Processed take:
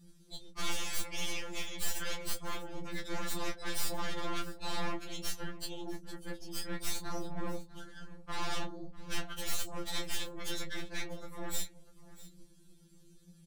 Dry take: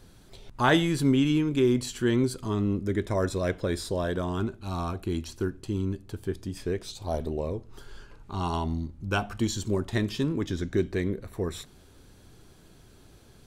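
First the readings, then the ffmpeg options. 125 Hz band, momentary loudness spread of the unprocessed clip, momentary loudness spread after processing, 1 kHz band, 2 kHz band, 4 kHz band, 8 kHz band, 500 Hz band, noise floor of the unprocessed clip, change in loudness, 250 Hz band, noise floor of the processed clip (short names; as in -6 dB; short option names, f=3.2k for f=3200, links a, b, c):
-18.5 dB, 11 LU, 10 LU, -8.5 dB, -6.5 dB, -2.0 dB, +1.5 dB, -15.5 dB, -54 dBFS, -11.0 dB, -17.5 dB, -59 dBFS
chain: -filter_complex "[0:a]lowpass=11k,afftdn=nr=23:nf=-45,crystalizer=i=8:c=0,acompressor=threshold=-35dB:ratio=2.5,afftfilt=real='re*lt(hypot(re,im),0.0891)':imag='im*lt(hypot(re,im),0.0891)':win_size=1024:overlap=0.75,afftfilt=real='hypot(re,im)*cos(2*PI*random(0))':imag='hypot(re,im)*sin(2*PI*random(1))':win_size=512:overlap=0.75,aeval=exprs='0.0501*(cos(1*acos(clip(val(0)/0.0501,-1,1)))-cos(1*PI/2))+0.02*(cos(6*acos(clip(val(0)/0.0501,-1,1)))-cos(6*PI/2))':c=same,volume=34dB,asoftclip=hard,volume=-34dB,asplit=2[a][b];[b]adelay=21,volume=-8.5dB[c];[a][c]amix=inputs=2:normalize=0,asplit=2[d][e];[e]aecho=0:1:648:0.112[f];[d][f]amix=inputs=2:normalize=0,afftfilt=real='re*2.83*eq(mod(b,8),0)':imag='im*2.83*eq(mod(b,8),0)':win_size=2048:overlap=0.75,volume=7dB"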